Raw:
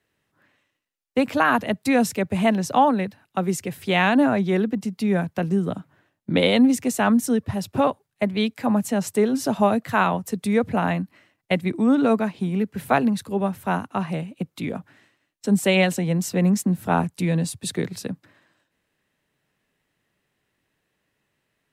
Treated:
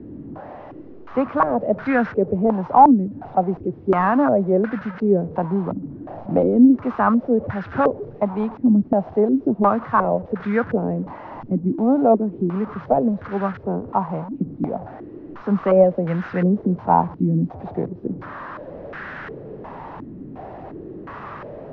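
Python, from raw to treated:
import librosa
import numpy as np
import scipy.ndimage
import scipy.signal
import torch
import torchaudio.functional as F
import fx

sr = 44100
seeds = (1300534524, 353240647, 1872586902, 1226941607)

y = fx.delta_mod(x, sr, bps=32000, step_db=-29.0)
y = fx.filter_held_lowpass(y, sr, hz=2.8, low_hz=280.0, high_hz=1500.0)
y = y * 10.0 ** (-1.0 / 20.0)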